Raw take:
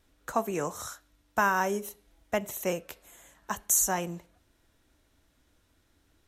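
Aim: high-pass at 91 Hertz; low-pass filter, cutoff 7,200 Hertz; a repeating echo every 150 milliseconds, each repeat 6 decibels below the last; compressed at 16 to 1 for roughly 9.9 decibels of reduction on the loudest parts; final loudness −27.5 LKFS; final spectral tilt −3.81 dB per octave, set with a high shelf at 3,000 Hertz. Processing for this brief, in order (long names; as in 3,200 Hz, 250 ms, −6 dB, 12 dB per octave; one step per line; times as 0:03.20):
high-pass filter 91 Hz
low-pass filter 7,200 Hz
high-shelf EQ 3,000 Hz −7 dB
downward compressor 16 to 1, threshold −30 dBFS
repeating echo 150 ms, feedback 50%, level −6 dB
level +10 dB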